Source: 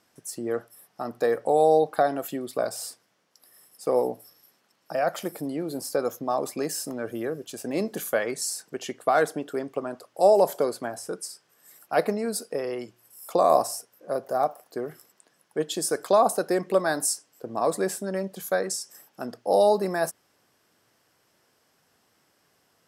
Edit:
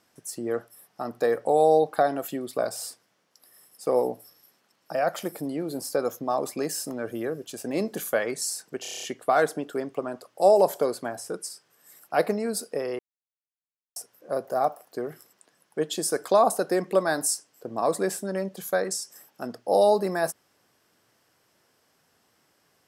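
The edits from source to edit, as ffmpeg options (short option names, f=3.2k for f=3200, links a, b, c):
-filter_complex "[0:a]asplit=10[a][b][c][d][e][f][g][h][i][j];[a]atrim=end=8.852[k];[b]atrim=start=8.818:end=8.852[l];[c]atrim=start=8.818:end=8.852[m];[d]atrim=start=8.818:end=8.852[n];[e]atrim=start=8.818:end=8.852[o];[f]atrim=start=8.818:end=8.852[p];[g]atrim=start=8.818:end=8.852[q];[h]atrim=start=8.818:end=12.78,asetpts=PTS-STARTPTS,afade=t=out:st=3.958:d=0.004:c=hsin[r];[i]atrim=start=12.78:end=13.75,asetpts=PTS-STARTPTS,volume=0[s];[j]atrim=start=13.75,asetpts=PTS-STARTPTS,afade=t=in:d=0.004:c=hsin[t];[k][l]acrossfade=d=0.004:c1=hsin:c2=hsin[u];[u][m]acrossfade=d=0.004:c1=hsin:c2=hsin[v];[v][n]acrossfade=d=0.004:c1=hsin:c2=hsin[w];[w][o]acrossfade=d=0.004:c1=hsin:c2=hsin[x];[x][p]acrossfade=d=0.004:c1=hsin:c2=hsin[y];[y][q]acrossfade=d=0.004:c1=hsin:c2=hsin[z];[r][s][t]concat=n=3:v=0:a=1[aa];[z][aa]acrossfade=d=0.004:c1=hsin:c2=hsin"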